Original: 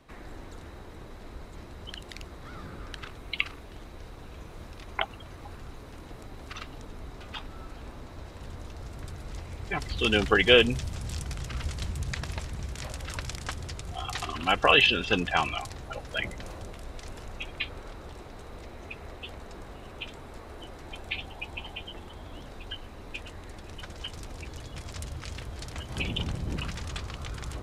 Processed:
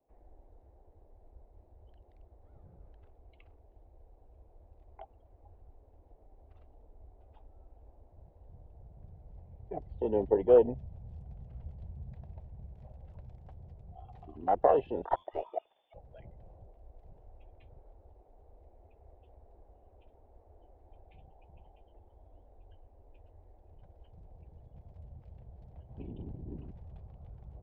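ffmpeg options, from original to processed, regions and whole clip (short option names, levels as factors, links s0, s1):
-filter_complex "[0:a]asettb=1/sr,asplit=3[s0][s1][s2];[s0]atrim=end=15.054[s3];[s1]atrim=start=15.05:end=15.94,asetpts=PTS-STARTPTS,afade=t=in:d=0.004:c=qsin,afade=t=out:st=0.886:d=0.004:c=qsin,lowpass=f=3100:t=q:w=0.5098,lowpass=f=3100:t=q:w=0.6013,lowpass=f=3100:t=q:w=0.9,lowpass=f=3100:t=q:w=2.563,afreqshift=-3600,equalizer=f=800:w=0.59:g=7,aeval=exprs='clip(val(0),-1,0.075)':c=same[s4];[s2]atrim=start=15.936[s5];[s3][s4]acrossfade=d=0.004:c1=hsin:c2=qsin[s6];[s6][s5]acrossfade=d=0.004:c1=qsin:c2=hsin,firequalizer=gain_entry='entry(770,0);entry(1200,-22);entry(5800,-27)':delay=0.05:min_phase=1,afwtdn=0.0398,acrossover=split=400 3800:gain=0.2 1 0.224[s7][s8][s9];[s7][s8][s9]amix=inputs=3:normalize=0,volume=1.41"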